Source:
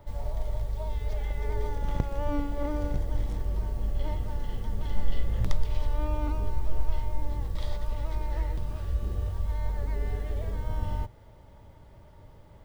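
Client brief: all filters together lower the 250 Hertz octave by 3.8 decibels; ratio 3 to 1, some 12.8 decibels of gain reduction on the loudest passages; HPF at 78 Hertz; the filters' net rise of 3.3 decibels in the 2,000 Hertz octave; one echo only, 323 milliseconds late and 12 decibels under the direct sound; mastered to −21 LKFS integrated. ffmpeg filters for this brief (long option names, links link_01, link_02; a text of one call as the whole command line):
ffmpeg -i in.wav -af "highpass=78,equalizer=frequency=250:width_type=o:gain=-5,equalizer=frequency=2000:width_type=o:gain=4,acompressor=threshold=-44dB:ratio=3,aecho=1:1:323:0.251,volume=26dB" out.wav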